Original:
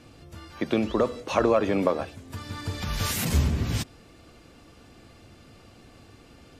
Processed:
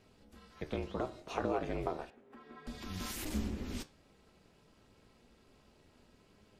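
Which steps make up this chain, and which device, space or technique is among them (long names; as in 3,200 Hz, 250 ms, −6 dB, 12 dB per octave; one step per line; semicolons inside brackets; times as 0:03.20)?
alien voice (ring modulation 140 Hz; flanger 0.31 Hz, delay 9.3 ms, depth 9.8 ms, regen +75%)
0:02.10–0:02.67: three-way crossover with the lows and the highs turned down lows −23 dB, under 200 Hz, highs −22 dB, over 2,500 Hz
level −6 dB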